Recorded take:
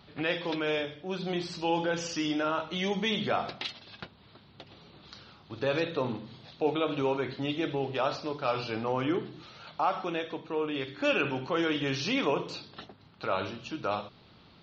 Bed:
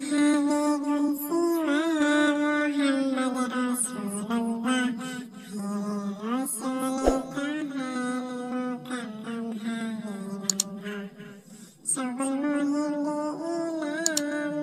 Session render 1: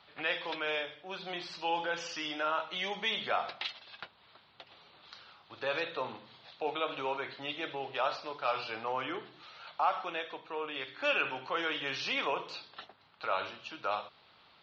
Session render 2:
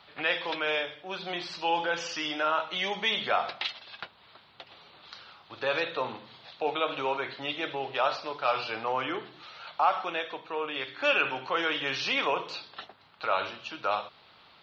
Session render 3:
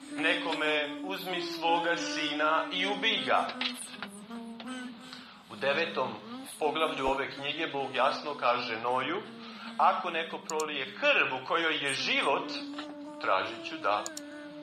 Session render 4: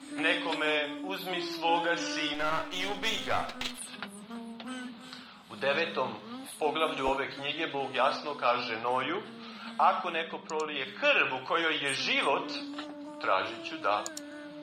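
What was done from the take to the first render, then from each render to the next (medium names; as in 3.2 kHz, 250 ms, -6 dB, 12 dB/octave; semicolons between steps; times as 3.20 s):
three-band isolator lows -17 dB, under 570 Hz, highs -14 dB, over 4.9 kHz
trim +5 dB
add bed -15 dB
2.34–3.78 s: partial rectifier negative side -12 dB; 10.22–10.76 s: distance through air 98 m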